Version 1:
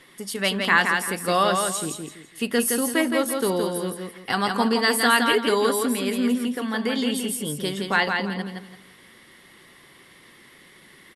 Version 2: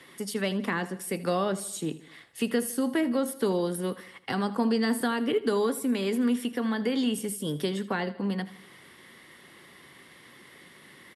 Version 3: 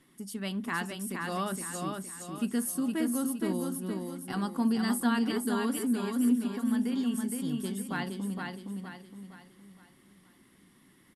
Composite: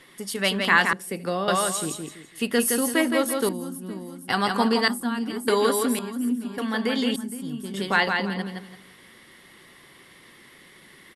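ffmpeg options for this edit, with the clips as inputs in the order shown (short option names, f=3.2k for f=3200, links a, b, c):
-filter_complex "[2:a]asplit=4[a][b][c][d];[0:a]asplit=6[e][f][g][h][i][j];[e]atrim=end=0.932[k];[1:a]atrim=start=0.928:end=1.482[l];[f]atrim=start=1.478:end=3.492[m];[a]atrim=start=3.488:end=4.292[n];[g]atrim=start=4.288:end=4.882[o];[b]atrim=start=4.878:end=5.482[p];[h]atrim=start=5.478:end=5.992[q];[c]atrim=start=5.988:end=6.582[r];[i]atrim=start=6.578:end=7.162[s];[d]atrim=start=7.158:end=7.742[t];[j]atrim=start=7.738[u];[k][l]acrossfade=d=0.004:c1=hsin:c2=hsin[v];[v][m]acrossfade=d=0.004:c1=hsin:c2=hsin[w];[w][n]acrossfade=d=0.004:c1=hsin:c2=hsin[x];[x][o]acrossfade=d=0.004:c1=hsin:c2=hsin[y];[y][p]acrossfade=d=0.004:c1=hsin:c2=hsin[z];[z][q]acrossfade=d=0.004:c1=hsin:c2=hsin[aa];[aa][r]acrossfade=d=0.004:c1=hsin:c2=hsin[ab];[ab][s]acrossfade=d=0.004:c1=hsin:c2=hsin[ac];[ac][t]acrossfade=d=0.004:c1=hsin:c2=hsin[ad];[ad][u]acrossfade=d=0.004:c1=hsin:c2=hsin"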